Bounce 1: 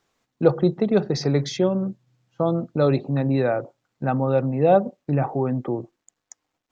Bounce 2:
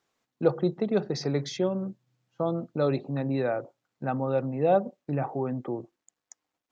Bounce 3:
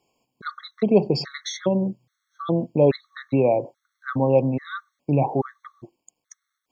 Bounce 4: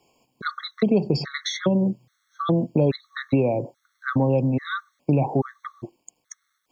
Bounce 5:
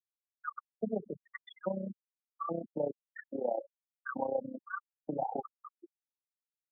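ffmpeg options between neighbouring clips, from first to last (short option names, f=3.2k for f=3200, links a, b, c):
-af "lowshelf=f=82:g=-11,volume=-5.5dB"
-af "afftfilt=real='re*gt(sin(2*PI*1.2*pts/sr)*(1-2*mod(floor(b*sr/1024/1100),2)),0)':imag='im*gt(sin(2*PI*1.2*pts/sr)*(1-2*mod(floor(b*sr/1024/1100),2)),0)':win_size=1024:overlap=0.75,volume=9dB"
-filter_complex "[0:a]acrossover=split=290|4000[a][b][c];[a]acompressor=threshold=-27dB:ratio=4[d];[b]acompressor=threshold=-32dB:ratio=4[e];[c]acompressor=threshold=-44dB:ratio=4[f];[d][e][f]amix=inputs=3:normalize=0,volume=7dB"
-af "tremolo=f=31:d=0.788,highpass=f=240:w=0.5412,highpass=f=240:w=1.3066,equalizer=f=270:t=q:w=4:g=-9,equalizer=f=390:t=q:w=4:g=-9,equalizer=f=820:t=q:w=4:g=4,equalizer=f=1.4k:t=q:w=4:g=-3,equalizer=f=2.2k:t=q:w=4:g=-8,lowpass=f=2.7k:w=0.5412,lowpass=f=2.7k:w=1.3066,afftfilt=real='re*gte(hypot(re,im),0.0631)':imag='im*gte(hypot(re,im),0.0631)':win_size=1024:overlap=0.75,volume=-5dB"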